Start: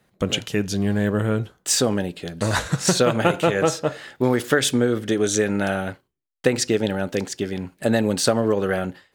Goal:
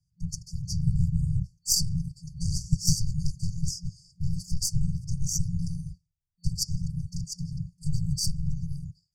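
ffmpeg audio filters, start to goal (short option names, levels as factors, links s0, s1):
-af "lowpass=6100,afftfilt=real='hypot(re,im)*cos(2*PI*random(0))':imag='hypot(re,im)*sin(2*PI*random(1))':win_size=512:overlap=0.75,aeval=exprs='0.355*(cos(1*acos(clip(val(0)/0.355,-1,1)))-cos(1*PI/2))+0.112*(cos(4*acos(clip(val(0)/0.355,-1,1)))-cos(4*PI/2))':c=same,dynaudnorm=f=150:g=9:m=2.37,afftfilt=real='re*(1-between(b*sr/4096,180,4500))':imag='im*(1-between(b*sr/4096,180,4500))':win_size=4096:overlap=0.75"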